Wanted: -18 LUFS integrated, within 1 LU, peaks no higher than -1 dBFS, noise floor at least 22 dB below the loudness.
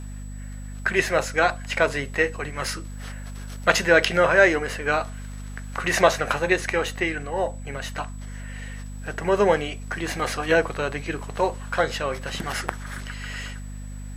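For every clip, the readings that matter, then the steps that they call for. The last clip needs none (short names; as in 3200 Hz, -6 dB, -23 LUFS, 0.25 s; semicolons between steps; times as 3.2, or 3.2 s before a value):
hum 50 Hz; harmonics up to 250 Hz; hum level -33 dBFS; steady tone 7900 Hz; tone level -50 dBFS; loudness -23.5 LUFS; peak -2.5 dBFS; loudness target -18.0 LUFS
-> notches 50/100/150/200/250 Hz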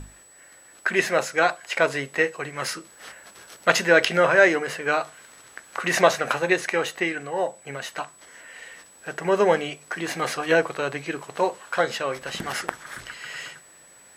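hum none; steady tone 7900 Hz; tone level -50 dBFS
-> notch 7900 Hz, Q 30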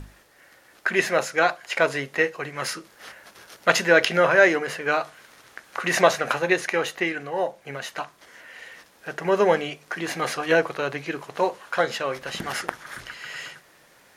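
steady tone none; loudness -23.5 LUFS; peak -2.5 dBFS; loudness target -18.0 LUFS
-> gain +5.5 dB; limiter -1 dBFS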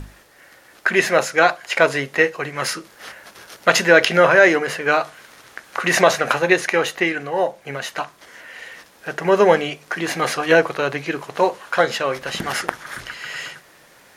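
loudness -18.5 LUFS; peak -1.0 dBFS; noise floor -50 dBFS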